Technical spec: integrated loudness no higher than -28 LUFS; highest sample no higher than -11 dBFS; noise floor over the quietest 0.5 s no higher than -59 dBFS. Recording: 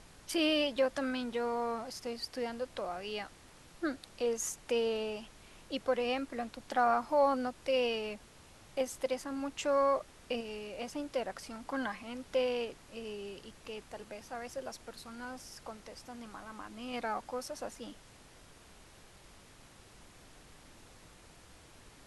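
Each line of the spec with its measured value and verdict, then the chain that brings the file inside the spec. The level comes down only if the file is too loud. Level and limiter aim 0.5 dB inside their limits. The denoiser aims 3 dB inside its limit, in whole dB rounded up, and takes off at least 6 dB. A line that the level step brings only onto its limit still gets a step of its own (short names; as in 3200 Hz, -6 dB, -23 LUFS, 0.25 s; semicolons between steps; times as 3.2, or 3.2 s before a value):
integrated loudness -35.5 LUFS: OK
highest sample -18.0 dBFS: OK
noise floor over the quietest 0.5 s -57 dBFS: fail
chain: denoiser 6 dB, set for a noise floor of -57 dBFS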